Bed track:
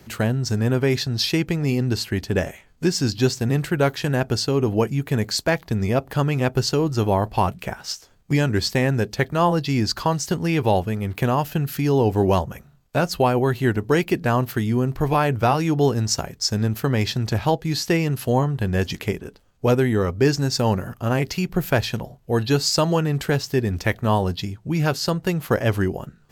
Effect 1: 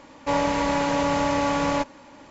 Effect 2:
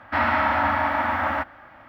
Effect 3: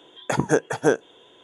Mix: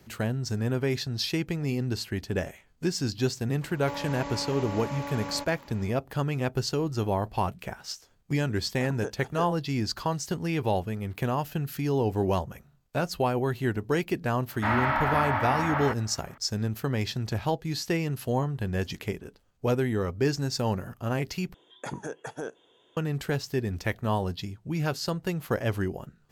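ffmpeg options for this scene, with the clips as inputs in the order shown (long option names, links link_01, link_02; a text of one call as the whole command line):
ffmpeg -i bed.wav -i cue0.wav -i cue1.wav -i cue2.wav -filter_complex "[3:a]asplit=2[link_01][link_02];[0:a]volume=-7.5dB[link_03];[1:a]acompressor=threshold=-29dB:ratio=6:attack=3.2:release=140:knee=1:detection=peak[link_04];[link_02]alimiter=limit=-14.5dB:level=0:latency=1:release=20[link_05];[link_03]asplit=2[link_06][link_07];[link_06]atrim=end=21.544[link_08];[link_05]atrim=end=1.43,asetpts=PTS-STARTPTS,volume=-10.5dB[link_09];[link_07]atrim=start=22.966[link_10];[link_04]atrim=end=2.3,asetpts=PTS-STARTPTS,volume=-3.5dB,afade=type=in:duration=0.004:curve=hsin,afade=type=out:start_time=2.296:duration=0.004:curve=hsin,adelay=159201S[link_11];[link_01]atrim=end=1.43,asetpts=PTS-STARTPTS,volume=-17.5dB,afade=type=in:duration=0.004:curve=hsin,afade=type=out:start_time=1.426:duration=0.004:curve=hsin,adelay=8510[link_12];[2:a]atrim=end=1.88,asetpts=PTS-STARTPTS,volume=-5dB,afade=type=in:duration=0.004:curve=hsin,afade=type=out:start_time=1.876:duration=0.004:curve=hsin,adelay=14500[link_13];[link_08][link_09]acrossfade=duration=0.004:curve1=hsin:curve2=hsin[link_14];[link_14][link_10]acrossfade=duration=0.004:curve1=hsin:curve2=hsin[link_15];[link_15][link_11][link_12][link_13]amix=inputs=4:normalize=0" out.wav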